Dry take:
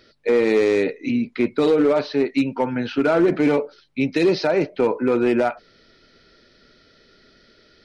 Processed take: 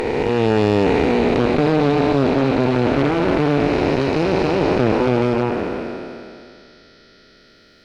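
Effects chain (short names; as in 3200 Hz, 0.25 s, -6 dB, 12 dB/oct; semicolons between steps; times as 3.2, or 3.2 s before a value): time blur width 1.2 s; added harmonics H 4 -11 dB, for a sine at -13.5 dBFS; gain +7 dB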